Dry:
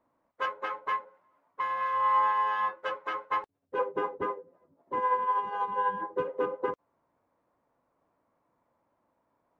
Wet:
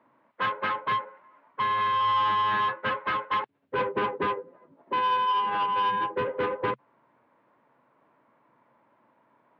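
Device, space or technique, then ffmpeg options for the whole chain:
overdrive pedal into a guitar cabinet: -filter_complex "[0:a]asplit=2[link_01][link_02];[link_02]highpass=frequency=720:poles=1,volume=22dB,asoftclip=type=tanh:threshold=-16dB[link_03];[link_01][link_03]amix=inputs=2:normalize=0,lowpass=frequency=2900:poles=1,volume=-6dB,highpass=84,equalizer=frequency=130:width_type=q:width=4:gain=10,equalizer=frequency=220:width_type=q:width=4:gain=5,equalizer=frequency=510:width_type=q:width=4:gain=-4,equalizer=frequency=730:width_type=q:width=4:gain=-7,equalizer=frequency=1200:width_type=q:width=4:gain=-4,lowpass=frequency=3400:width=0.5412,lowpass=frequency=3400:width=1.3066"

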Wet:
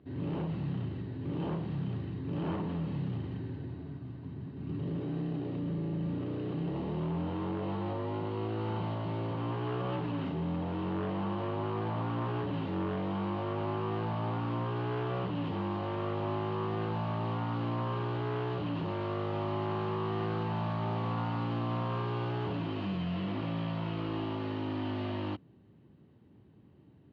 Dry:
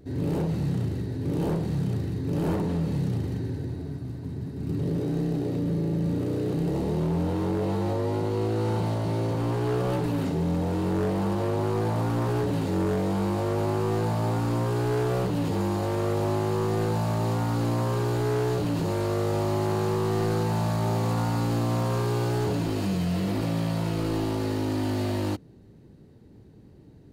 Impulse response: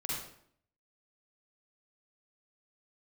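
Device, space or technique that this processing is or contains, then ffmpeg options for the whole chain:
guitar cabinet: -af "highpass=87,equalizer=frequency=460:width_type=q:width=4:gain=-5,equalizer=frequency=1100:width_type=q:width=4:gain=6,equalizer=frequency=3000:width_type=q:width=4:gain=7,lowpass=frequency=3400:width=0.5412,lowpass=frequency=3400:width=1.3066,volume=-7dB"

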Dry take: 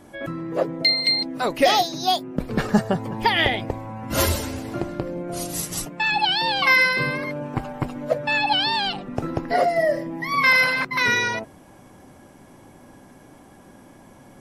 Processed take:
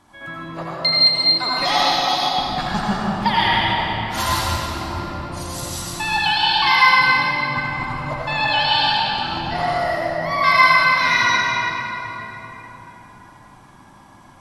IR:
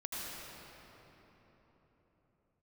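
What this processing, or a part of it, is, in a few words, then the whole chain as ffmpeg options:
swimming-pool hall: -filter_complex "[0:a]equalizer=frequency=250:width_type=o:width=1:gain=-3,equalizer=frequency=500:width_type=o:width=1:gain=-11,equalizer=frequency=1000:width_type=o:width=1:gain=10,equalizer=frequency=4000:width_type=o:width=1:gain=8,equalizer=frequency=8000:width_type=o:width=1:gain=5[link_01];[1:a]atrim=start_sample=2205[link_02];[link_01][link_02]afir=irnorm=-1:irlink=0,highshelf=frequency=4200:gain=-5.5,volume=-1.5dB"

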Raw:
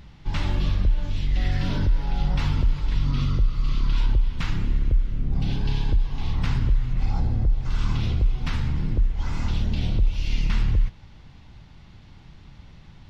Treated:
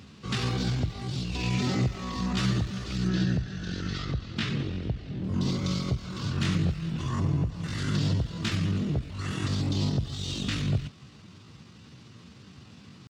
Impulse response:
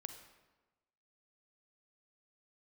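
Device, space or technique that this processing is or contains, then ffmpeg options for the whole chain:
chipmunk voice: -filter_complex "[0:a]asetrate=58866,aresample=44100,atempo=0.749154,highpass=frequency=93:width=0.5412,highpass=frequency=93:width=1.3066,equalizer=frequency=3400:width_type=o:width=1.4:gain=3.5,asettb=1/sr,asplit=3[link_01][link_02][link_03];[link_01]atrim=end=3.084[link_04];[link_02]atrim=start=3.08:end=5.24,asetpts=PTS-STARTPTS,afade=type=in:duration=0.004:curve=qsin,afade=type=out:start_time=2.156:duration=0.004:curve=qsin,lowpass=5000[link_05];[link_03]atrim=start=5.236[link_06];[link_04][link_05]acrossfade=duration=0.004:curve1=hsin:curve2=qsin[link_07];[link_07][link_06]acrossfade=duration=0.004:curve1=qsin:curve2=hsin"

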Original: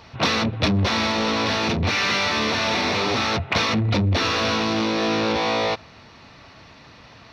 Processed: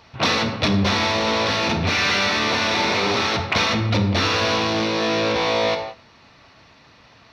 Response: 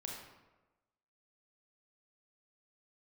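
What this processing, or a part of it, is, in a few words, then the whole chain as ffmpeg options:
keyed gated reverb: -filter_complex "[0:a]asplit=3[link_01][link_02][link_03];[1:a]atrim=start_sample=2205[link_04];[link_02][link_04]afir=irnorm=-1:irlink=0[link_05];[link_03]apad=whole_len=322890[link_06];[link_05][link_06]sidechaingate=range=-33dB:threshold=-42dB:ratio=16:detection=peak,volume=2.5dB[link_07];[link_01][link_07]amix=inputs=2:normalize=0,lowshelf=frequency=370:gain=-3,volume=-3.5dB"

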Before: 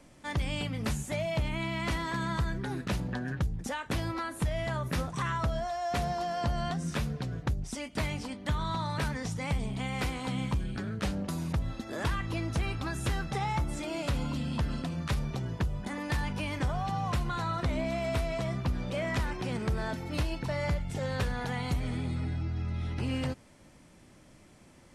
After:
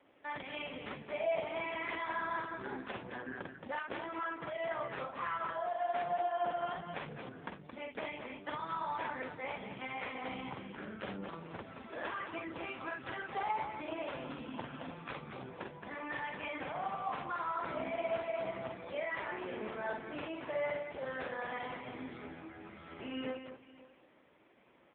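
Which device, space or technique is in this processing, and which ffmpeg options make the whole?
satellite phone: -filter_complex "[0:a]asettb=1/sr,asplit=3[link_01][link_02][link_03];[link_01]atrim=end=1.034[link_04];[link_02]atrim=start=1.03:end=1.54,asetpts=PTS-STARTPTS,afade=type=in:duration=0.004:curve=qsin,afade=type=out:start_time=0.506:duration=0.004:curve=qsin,adynamicequalizer=threshold=0.00794:dfrequency=600:dqfactor=1.3:tfrequency=600:tqfactor=1.3:attack=5:release=100:ratio=0.375:range=1.5:mode=boostabove:tftype=bell[link_05];[link_03]atrim=start=1.536[link_06];[link_04][link_05]acrossfade=duration=0.004:curve1=hsin:curve2=qsin[link_07];[link_07][link_06]acrossfade=duration=0.004:curve1=qsin:curve2=hsin,highpass=360,lowpass=3300,aecho=1:1:46.65|221.6:0.794|0.501,aecho=1:1:541:0.119,volume=-2.5dB" -ar 8000 -c:a libopencore_amrnb -b:a 5900

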